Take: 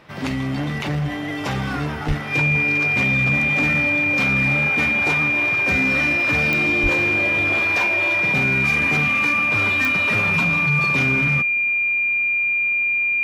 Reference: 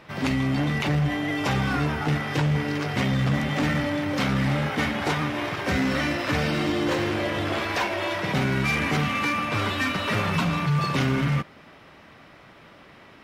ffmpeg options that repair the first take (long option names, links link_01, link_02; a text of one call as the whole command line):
ffmpeg -i in.wav -filter_complex "[0:a]adeclick=threshold=4,bandreject=frequency=2400:width=30,asplit=3[link_01][link_02][link_03];[link_01]afade=type=out:start_time=2.07:duration=0.02[link_04];[link_02]highpass=frequency=140:width=0.5412,highpass=frequency=140:width=1.3066,afade=type=in:start_time=2.07:duration=0.02,afade=type=out:start_time=2.19:duration=0.02[link_05];[link_03]afade=type=in:start_time=2.19:duration=0.02[link_06];[link_04][link_05][link_06]amix=inputs=3:normalize=0,asplit=3[link_07][link_08][link_09];[link_07]afade=type=out:start_time=6.82:duration=0.02[link_10];[link_08]highpass=frequency=140:width=0.5412,highpass=frequency=140:width=1.3066,afade=type=in:start_time=6.82:duration=0.02,afade=type=out:start_time=6.94:duration=0.02[link_11];[link_09]afade=type=in:start_time=6.94:duration=0.02[link_12];[link_10][link_11][link_12]amix=inputs=3:normalize=0" out.wav